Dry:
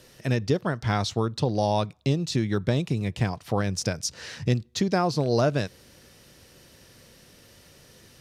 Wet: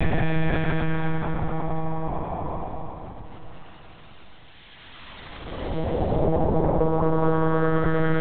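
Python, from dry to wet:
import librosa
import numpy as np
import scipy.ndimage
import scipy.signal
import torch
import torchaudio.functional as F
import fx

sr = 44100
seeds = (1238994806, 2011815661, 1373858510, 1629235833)

p1 = fx.paulstretch(x, sr, seeds[0], factor=21.0, window_s=0.1, from_s=3.23)
p2 = np.clip(p1, -10.0 ** (-23.0 / 20.0), 10.0 ** (-23.0 / 20.0))
p3 = p1 + (p2 * 10.0 ** (-7.0 / 20.0))
p4 = fx.lpc_monotone(p3, sr, seeds[1], pitch_hz=160.0, order=10)
y = fx.echo_diffused(p4, sr, ms=475, feedback_pct=56, wet_db=-14.0)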